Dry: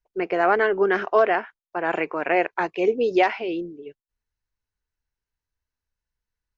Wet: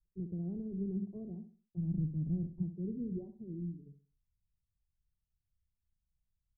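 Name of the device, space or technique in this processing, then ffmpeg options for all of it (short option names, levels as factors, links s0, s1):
the neighbour's flat through the wall: -filter_complex "[0:a]asplit=3[s0][s1][s2];[s0]afade=t=out:st=1.76:d=0.02[s3];[s1]asubboost=boost=9:cutoff=170,afade=t=in:st=1.76:d=0.02,afade=t=out:st=2.61:d=0.02[s4];[s2]afade=t=in:st=2.61:d=0.02[s5];[s3][s4][s5]amix=inputs=3:normalize=0,lowpass=f=170:w=0.5412,lowpass=f=170:w=1.3066,equalizer=f=180:t=o:w=0.71:g=6,aecho=1:1:64|128|192|256:0.316|0.104|0.0344|0.0114,volume=1.33"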